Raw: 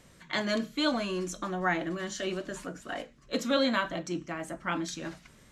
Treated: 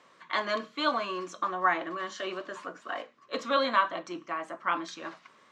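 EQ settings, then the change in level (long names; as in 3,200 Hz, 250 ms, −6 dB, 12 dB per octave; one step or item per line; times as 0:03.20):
band-pass filter 390–4,300 Hz
parametric band 1,100 Hz +11.5 dB 0.39 octaves
0.0 dB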